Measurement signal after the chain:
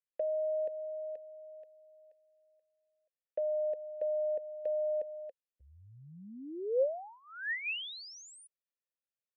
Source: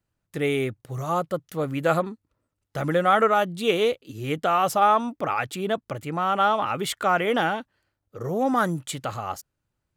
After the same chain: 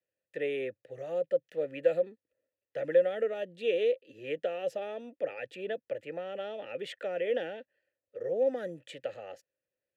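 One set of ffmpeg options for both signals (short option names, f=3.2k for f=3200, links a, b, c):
-filter_complex "[0:a]acrossover=split=120|480|3200[a][b][c][d];[c]acompressor=threshold=-30dB:ratio=6[e];[a][b][e][d]amix=inputs=4:normalize=0,asplit=3[f][g][h];[f]bandpass=f=530:t=q:w=8,volume=0dB[i];[g]bandpass=f=1.84k:t=q:w=8,volume=-6dB[j];[h]bandpass=f=2.48k:t=q:w=8,volume=-9dB[k];[i][j][k]amix=inputs=3:normalize=0,volume=4.5dB"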